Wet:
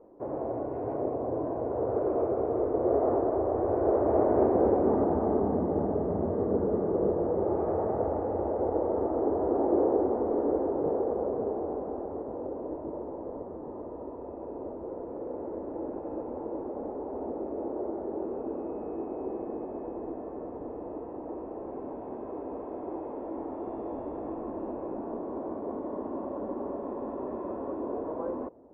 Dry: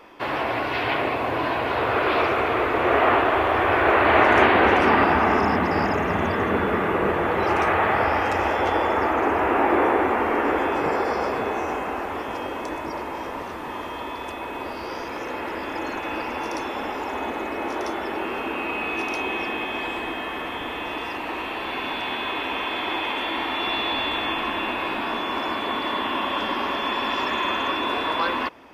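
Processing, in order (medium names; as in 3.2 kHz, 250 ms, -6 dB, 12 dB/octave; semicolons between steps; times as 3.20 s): four-pole ladder low-pass 660 Hz, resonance 35%; trim +1.5 dB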